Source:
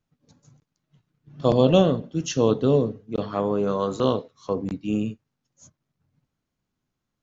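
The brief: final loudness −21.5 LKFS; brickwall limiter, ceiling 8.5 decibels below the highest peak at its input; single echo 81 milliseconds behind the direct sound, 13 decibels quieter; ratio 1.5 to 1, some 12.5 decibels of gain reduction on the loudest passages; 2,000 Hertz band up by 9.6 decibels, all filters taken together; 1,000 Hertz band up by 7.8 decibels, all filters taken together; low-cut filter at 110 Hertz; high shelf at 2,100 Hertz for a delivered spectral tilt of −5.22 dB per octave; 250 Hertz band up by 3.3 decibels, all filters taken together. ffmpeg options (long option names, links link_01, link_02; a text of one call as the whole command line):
ffmpeg -i in.wav -af "highpass=110,equalizer=frequency=250:width_type=o:gain=4,equalizer=frequency=1000:width_type=o:gain=6,equalizer=frequency=2000:width_type=o:gain=8,highshelf=frequency=2100:gain=6.5,acompressor=threshold=-45dB:ratio=1.5,alimiter=limit=-22.5dB:level=0:latency=1,aecho=1:1:81:0.224,volume=12dB" out.wav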